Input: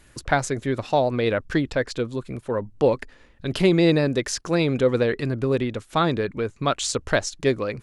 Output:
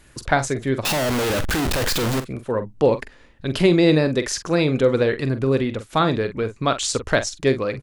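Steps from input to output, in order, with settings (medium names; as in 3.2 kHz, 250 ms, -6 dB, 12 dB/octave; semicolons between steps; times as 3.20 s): 0.85–2.20 s: one-bit comparator; doubling 45 ms -11 dB; trim +2 dB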